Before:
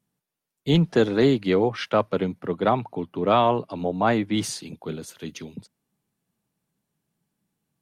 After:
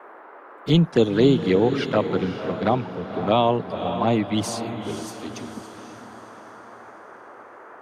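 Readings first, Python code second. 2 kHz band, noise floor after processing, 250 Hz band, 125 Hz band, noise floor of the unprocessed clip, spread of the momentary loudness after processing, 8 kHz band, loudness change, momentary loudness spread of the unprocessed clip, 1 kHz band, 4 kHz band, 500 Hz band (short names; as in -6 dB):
-1.0 dB, -45 dBFS, +2.0 dB, +2.5 dB, -84 dBFS, 19 LU, 0.0 dB, +1.0 dB, 15 LU, -0.5 dB, +1.5 dB, +1.0 dB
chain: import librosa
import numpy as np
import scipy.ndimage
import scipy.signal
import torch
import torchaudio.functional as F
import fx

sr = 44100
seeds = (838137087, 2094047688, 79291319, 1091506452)

y = fx.env_flanger(x, sr, rest_ms=5.3, full_db=-16.0)
y = fx.dmg_noise_band(y, sr, seeds[0], low_hz=310.0, high_hz=1500.0, level_db=-47.0)
y = fx.echo_diffused(y, sr, ms=526, feedback_pct=43, wet_db=-9.0)
y = y * 10.0 ** (2.5 / 20.0)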